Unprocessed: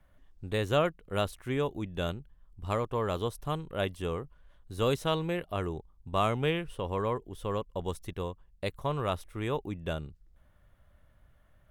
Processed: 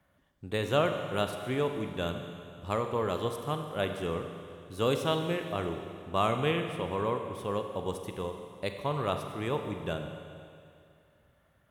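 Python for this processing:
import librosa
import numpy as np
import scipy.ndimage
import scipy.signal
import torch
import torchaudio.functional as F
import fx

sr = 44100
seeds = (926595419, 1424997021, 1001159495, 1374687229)

y = scipy.signal.sosfilt(scipy.signal.butter(2, 110.0, 'highpass', fs=sr, output='sos'), x)
y = fx.rev_schroeder(y, sr, rt60_s=2.4, comb_ms=32, drr_db=5.5)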